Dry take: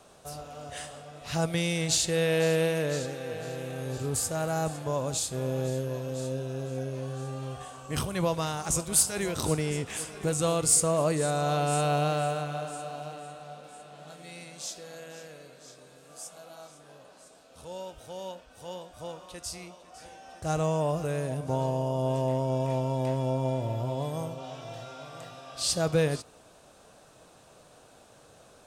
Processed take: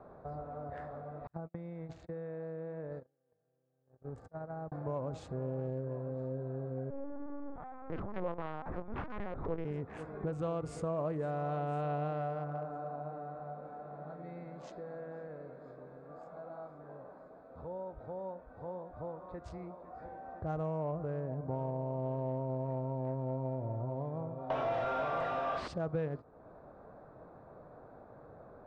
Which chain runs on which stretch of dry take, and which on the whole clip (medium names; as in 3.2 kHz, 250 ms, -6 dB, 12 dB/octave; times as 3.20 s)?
1.27–4.72 s: gate -29 dBFS, range -47 dB + compression 12:1, threshold -35 dBFS
6.90–9.65 s: comb filter that takes the minimum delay 4 ms + frequency shift +25 Hz + LPC vocoder at 8 kHz pitch kept
24.50–25.68 s: treble shelf 6.9 kHz +10.5 dB + overdrive pedal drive 33 dB, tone 2.3 kHz, clips at -12.5 dBFS
whole clip: local Wiener filter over 15 samples; low-pass 1.6 kHz 12 dB/octave; compression 2:1, threshold -46 dBFS; trim +3.5 dB